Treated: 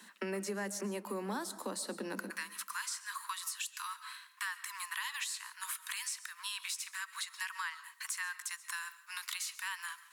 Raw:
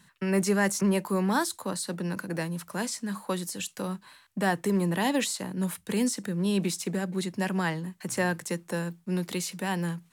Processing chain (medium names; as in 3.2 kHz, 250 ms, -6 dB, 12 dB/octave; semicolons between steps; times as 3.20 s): steep high-pass 200 Hz 96 dB/octave, from 2.29 s 980 Hz; compression 6:1, threshold -42 dBFS, peak gain reduction 19.5 dB; reverberation RT60 0.55 s, pre-delay 95 ms, DRR 14 dB; trim +5 dB